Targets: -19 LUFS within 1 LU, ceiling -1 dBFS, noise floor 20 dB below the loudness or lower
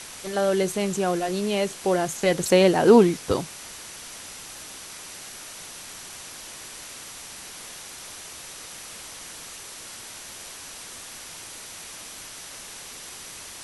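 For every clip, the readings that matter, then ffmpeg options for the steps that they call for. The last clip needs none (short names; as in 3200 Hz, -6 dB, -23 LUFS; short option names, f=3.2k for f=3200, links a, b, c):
steady tone 5900 Hz; tone level -50 dBFS; noise floor -41 dBFS; noise floor target -42 dBFS; loudness -21.5 LUFS; peak -4.0 dBFS; loudness target -19.0 LUFS
-> -af "bandreject=f=5.9k:w=30"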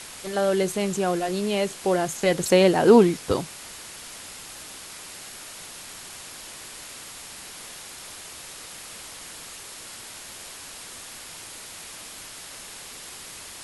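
steady tone none; noise floor -41 dBFS; noise floor target -42 dBFS
-> -af "afftdn=nr=6:nf=-41"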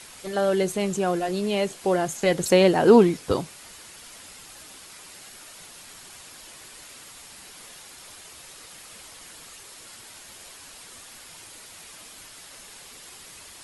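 noise floor -46 dBFS; loudness -21.5 LUFS; peak -4.0 dBFS; loudness target -19.0 LUFS
-> -af "volume=2.5dB"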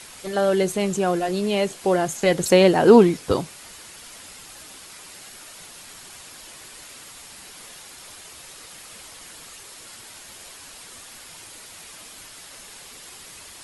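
loudness -19.0 LUFS; peak -1.5 dBFS; noise floor -43 dBFS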